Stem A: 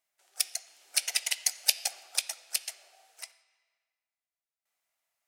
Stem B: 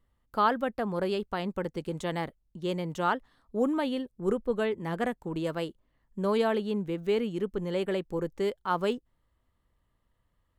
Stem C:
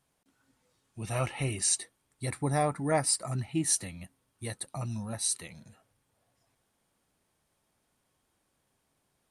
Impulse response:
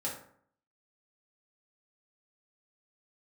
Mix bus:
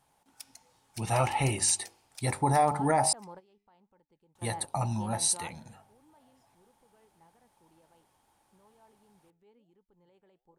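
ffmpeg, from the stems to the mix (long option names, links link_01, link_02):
-filter_complex "[0:a]volume=-18.5dB[link_01];[1:a]acompressor=threshold=-29dB:ratio=2,alimiter=level_in=2.5dB:limit=-24dB:level=0:latency=1:release=76,volume=-2.5dB,flanger=delay=3.2:depth=6.7:regen=89:speed=1.2:shape=sinusoidal,adelay=2350,volume=-9dB[link_02];[2:a]bandreject=frequency=48.92:width_type=h:width=4,bandreject=frequency=97.84:width_type=h:width=4,bandreject=frequency=146.76:width_type=h:width=4,bandreject=frequency=195.68:width_type=h:width=4,bandreject=frequency=244.6:width_type=h:width=4,bandreject=frequency=293.52:width_type=h:width=4,bandreject=frequency=342.44:width_type=h:width=4,bandreject=frequency=391.36:width_type=h:width=4,bandreject=frequency=440.28:width_type=h:width=4,bandreject=frequency=489.2:width_type=h:width=4,bandreject=frequency=538.12:width_type=h:width=4,bandreject=frequency=587.04:width_type=h:width=4,bandreject=frequency=635.96:width_type=h:width=4,bandreject=frequency=684.88:width_type=h:width=4,bandreject=frequency=733.8:width_type=h:width=4,bandreject=frequency=782.72:width_type=h:width=4,bandreject=frequency=831.64:width_type=h:width=4,bandreject=frequency=880.56:width_type=h:width=4,bandreject=frequency=929.48:width_type=h:width=4,bandreject=frequency=978.4:width_type=h:width=4,bandreject=frequency=1027.32:width_type=h:width=4,bandreject=frequency=1076.24:width_type=h:width=4,bandreject=frequency=1125.16:width_type=h:width=4,acontrast=57,volume=-2.5dB,asplit=3[link_03][link_04][link_05];[link_03]atrim=end=3.13,asetpts=PTS-STARTPTS,afade=type=out:start_time=3.126:duration=0.004:curve=hsin[link_06];[link_04]atrim=start=3.13:end=4.35,asetpts=PTS-STARTPTS,volume=0[link_07];[link_05]atrim=start=4.35,asetpts=PTS-STARTPTS,afade=type=in:duration=0.004:curve=hsin[link_08];[link_06][link_07][link_08]concat=n=3:v=0:a=1,asplit=2[link_09][link_10];[link_10]apad=whole_len=570639[link_11];[link_02][link_11]sidechaingate=range=-18dB:threshold=-58dB:ratio=16:detection=peak[link_12];[link_12][link_09]amix=inputs=2:normalize=0,equalizer=frequency=850:width_type=o:width=0.37:gain=14.5,alimiter=limit=-15.5dB:level=0:latency=1:release=62,volume=0dB[link_13];[link_01][link_13]amix=inputs=2:normalize=0"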